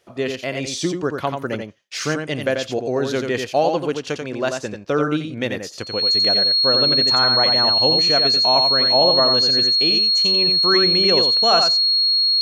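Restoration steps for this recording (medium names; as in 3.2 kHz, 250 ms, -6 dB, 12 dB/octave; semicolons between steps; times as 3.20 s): band-stop 4.3 kHz, Q 30; inverse comb 88 ms -5.5 dB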